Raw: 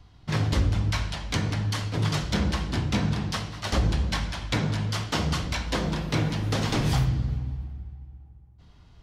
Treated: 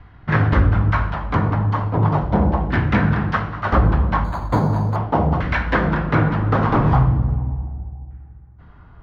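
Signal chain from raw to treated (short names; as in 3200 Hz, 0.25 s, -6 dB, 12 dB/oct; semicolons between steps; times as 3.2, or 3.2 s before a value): LFO low-pass saw down 0.37 Hz 770–1800 Hz; 4.24–4.96 decimation joined by straight lines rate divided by 8×; gain +8 dB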